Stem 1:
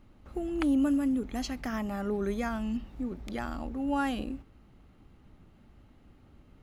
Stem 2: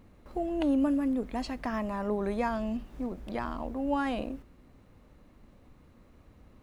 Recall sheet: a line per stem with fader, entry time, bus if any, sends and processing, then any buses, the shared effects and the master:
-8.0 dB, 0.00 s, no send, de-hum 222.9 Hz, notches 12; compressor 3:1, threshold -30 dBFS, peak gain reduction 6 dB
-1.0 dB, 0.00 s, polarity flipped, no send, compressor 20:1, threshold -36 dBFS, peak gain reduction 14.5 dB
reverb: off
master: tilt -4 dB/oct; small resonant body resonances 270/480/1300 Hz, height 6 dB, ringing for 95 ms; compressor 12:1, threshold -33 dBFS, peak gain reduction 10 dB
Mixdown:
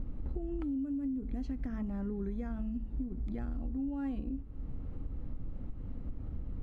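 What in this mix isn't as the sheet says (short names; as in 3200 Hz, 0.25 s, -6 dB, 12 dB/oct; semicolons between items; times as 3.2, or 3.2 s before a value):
stem 1 -8.0 dB -> +2.0 dB; stem 2: polarity flipped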